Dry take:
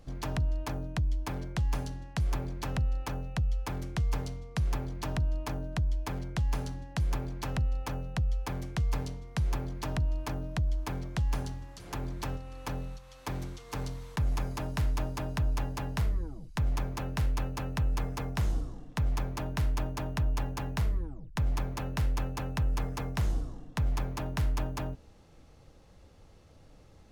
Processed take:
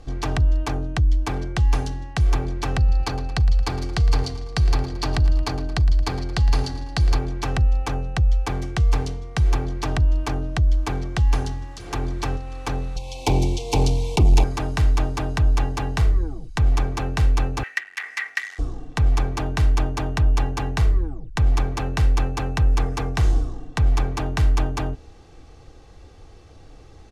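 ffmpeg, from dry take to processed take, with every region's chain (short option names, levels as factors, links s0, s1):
-filter_complex "[0:a]asettb=1/sr,asplit=3[s0][s1][s2];[s0]atrim=end=2.774[s3];[s1]atrim=start=2.77:end=7.19,asetpts=PTS-STARTPTS,afade=t=in:d=0.004:c=qsin,afade=t=out:st=4.416:d=0.004:c=qsin,equalizer=f=4500:w=5.8:g=12.5,aecho=1:1:112|224|336|448|560:0.178|0.0996|0.0558|0.0312|0.0175,atrim=end_sample=194922[s4];[s2]atrim=start=7.186[s5];[s3][s4]acrossfade=d=0.004:c1=hsin:c2=qsin[s6];[s6][s5]acrossfade=d=0.004:c1=qsin:c2=hsin,asettb=1/sr,asplit=3[s7][s8][s9];[s7]atrim=end=12.964[s10];[s8]atrim=start=12.96:end=14.44,asetpts=PTS-STARTPTS,afade=t=in:d=0.004:c=qsin,afade=t=out:st=1.476:d=0.004:c=qsin,asuperstop=centerf=1500:order=12:qfactor=1.2,aeval=exprs='0.0891*sin(PI/2*1.78*val(0)/0.0891)':c=same[s11];[s9]atrim=start=14.436[s12];[s10][s11]acrossfade=d=0.004:c1=hsin:c2=qsin[s13];[s13][s12]acrossfade=d=0.004:c1=qsin:c2=hsin,asettb=1/sr,asplit=3[s14][s15][s16];[s14]atrim=end=17.634[s17];[s15]atrim=start=17.63:end=18.59,asetpts=PTS-STARTPTS,afade=t=in:d=0.004:c=qsin,afade=t=out:st=0.956:d=0.004:c=qsin,volume=39.8,asoftclip=hard,volume=0.0251,highpass=f=1900:t=q:w=13[s18];[s16]atrim=start=18.586[s19];[s17][s18]acrossfade=d=0.004:c1=hsin:c2=qsin[s20];[s20][s19]acrossfade=d=0.004:c1=qsin:c2=hsin,lowpass=8700,aecho=1:1:2.6:0.46,volume=2.82"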